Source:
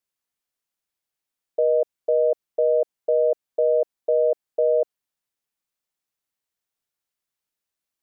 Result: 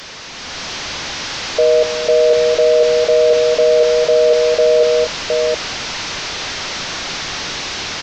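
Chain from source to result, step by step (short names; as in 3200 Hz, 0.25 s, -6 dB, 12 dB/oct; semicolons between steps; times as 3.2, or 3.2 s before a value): delta modulation 32 kbps, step -26.5 dBFS; AGC gain up to 8 dB; tapped delay 0.242/0.715 s -10.5/-4.5 dB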